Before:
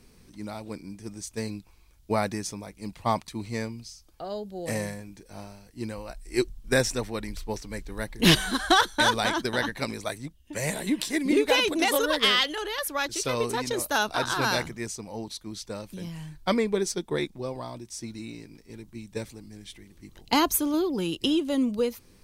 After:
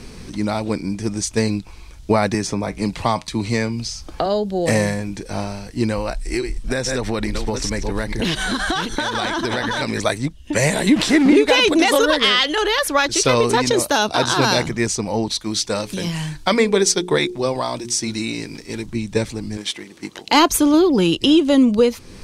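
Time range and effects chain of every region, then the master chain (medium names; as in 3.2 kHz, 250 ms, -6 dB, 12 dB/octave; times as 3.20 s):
2.34–4.26 s: feedback comb 57 Hz, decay 0.17 s, harmonics odd, mix 40% + three bands compressed up and down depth 70%
5.99–10.00 s: chunks repeated in reverse 427 ms, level -9.5 dB + compression 12:1, threshold -33 dBFS
10.96–11.36 s: jump at every zero crossing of -29 dBFS + treble shelf 3.9 kHz -9 dB
13.71–14.68 s: high-pass 82 Hz + dynamic bell 1.5 kHz, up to -6 dB, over -38 dBFS, Q 1
15.40–18.86 s: tilt EQ +1.5 dB/octave + hum notches 60/120/180/240/300/360/420/480 Hz
19.57–20.49 s: high-pass 280 Hz + waveshaping leveller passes 1
whole clip: low-pass 8 kHz 12 dB/octave; compression 1.5:1, threshold -43 dBFS; loudness maximiser +22.5 dB; trim -3.5 dB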